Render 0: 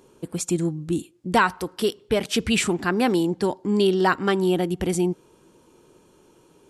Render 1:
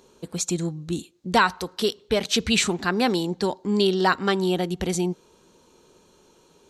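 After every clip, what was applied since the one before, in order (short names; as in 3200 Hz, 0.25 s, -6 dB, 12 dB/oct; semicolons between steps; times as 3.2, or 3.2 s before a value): thirty-one-band EQ 125 Hz -10 dB, 315 Hz -7 dB, 4000 Hz +9 dB, 6300 Hz +6 dB, 10000 Hz -6 dB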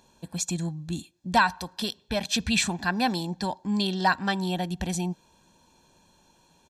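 comb 1.2 ms, depth 73%; gain -4.5 dB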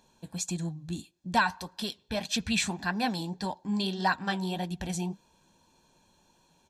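flange 1.7 Hz, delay 3.7 ms, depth 8.4 ms, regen -56%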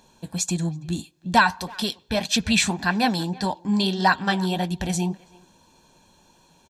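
speakerphone echo 0.33 s, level -22 dB; gain +8 dB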